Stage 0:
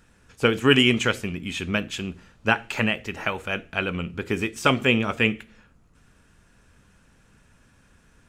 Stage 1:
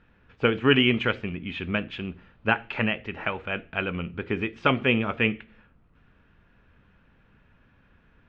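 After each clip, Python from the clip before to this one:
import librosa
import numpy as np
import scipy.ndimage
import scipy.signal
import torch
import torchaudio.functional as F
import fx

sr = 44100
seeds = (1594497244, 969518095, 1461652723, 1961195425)

y = scipy.signal.sosfilt(scipy.signal.butter(4, 3200.0, 'lowpass', fs=sr, output='sos'), x)
y = y * librosa.db_to_amplitude(-2.0)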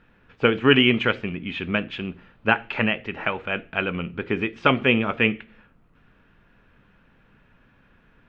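y = fx.peak_eq(x, sr, hz=69.0, db=-7.5, octaves=1.1)
y = y * librosa.db_to_amplitude(3.5)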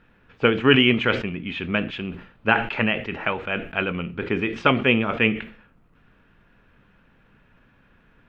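y = fx.sustainer(x, sr, db_per_s=110.0)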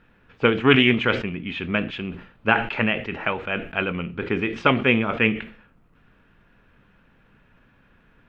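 y = fx.doppler_dist(x, sr, depth_ms=0.1)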